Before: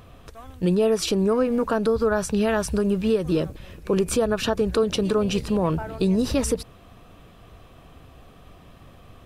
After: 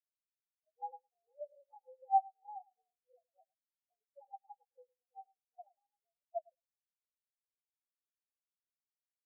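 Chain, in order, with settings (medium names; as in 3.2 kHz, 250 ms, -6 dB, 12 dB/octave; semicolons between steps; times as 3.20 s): frequency axis rescaled in octaves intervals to 122%; ladder high-pass 650 Hz, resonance 70%; bucket-brigade echo 108 ms, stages 1024, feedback 36%, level -6.5 dB; spectral contrast expander 4:1; trim -1.5 dB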